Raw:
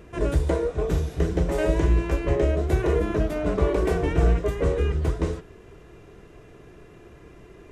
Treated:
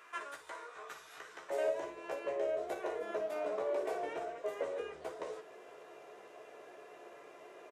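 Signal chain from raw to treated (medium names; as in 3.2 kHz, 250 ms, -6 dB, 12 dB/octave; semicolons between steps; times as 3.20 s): compression 6:1, threshold -30 dBFS, peak gain reduction 14.5 dB; resonant high-pass 1.2 kHz, resonance Q 2.2, from 1.50 s 610 Hz; early reflections 14 ms -6 dB, 57 ms -11 dB; trim -4.5 dB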